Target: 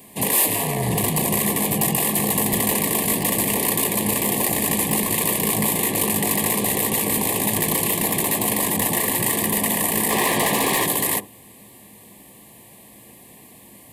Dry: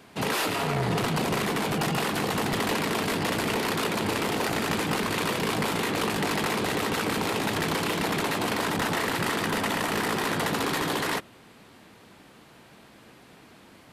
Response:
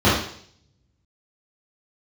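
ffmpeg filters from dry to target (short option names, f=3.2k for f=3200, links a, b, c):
-filter_complex "[0:a]aexciter=amount=5.8:drive=7.4:freq=7.8k,asettb=1/sr,asplit=3[a][b][c];[a]atrim=end=10.104[d];[b]atrim=start=10.1:end=10.86,asetpts=PTS-STARTPTS,afade=t=in:d=0.004:c=qsin,afade=t=out:st=0.756:d=0.004:c=qsin,asplit=2[e][f];[f]highpass=f=720:p=1,volume=17dB,asoftclip=type=tanh:threshold=-8dB[g];[e][g]amix=inputs=2:normalize=0,lowpass=f=3.3k:p=1,volume=-6dB[h];[c]atrim=start=10.856[i];[d][h]acrossfade=d=0.004:c1=hsin:c2=qsin[j];[j][i]acrossfade=d=0.004:c1=qsin:c2=hsin,asuperstop=centerf=1400:order=12:qfactor=2.8,asplit=2[k][l];[1:a]atrim=start_sample=2205,atrim=end_sample=3528,lowpass=1.1k[m];[l][m]afir=irnorm=-1:irlink=0,volume=-33.5dB[n];[k][n]amix=inputs=2:normalize=0,asettb=1/sr,asplit=3[o][p][q];[o]atrim=end=7.944[r];[p]atrim=start=7.94:end=8.48,asetpts=PTS-STARTPTS,afade=t=in:d=0.004:c=qsin,afade=t=out:st=0.536:d=0.004:c=qsin,asoftclip=type=hard:threshold=-13.5dB[s];[q]atrim=start=8.476[t];[r][s]acrossfade=d=0.004:c1=hsin:c2=qsin[u];[u][t]acrossfade=d=0.004:c1=qsin:c2=hsin,volume=2dB"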